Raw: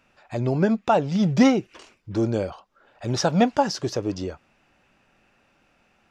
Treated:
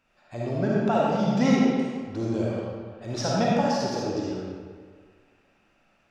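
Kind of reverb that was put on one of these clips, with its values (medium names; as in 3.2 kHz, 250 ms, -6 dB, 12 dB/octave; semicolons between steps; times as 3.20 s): algorithmic reverb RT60 1.7 s, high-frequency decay 0.75×, pre-delay 15 ms, DRR -5.5 dB; trim -8.5 dB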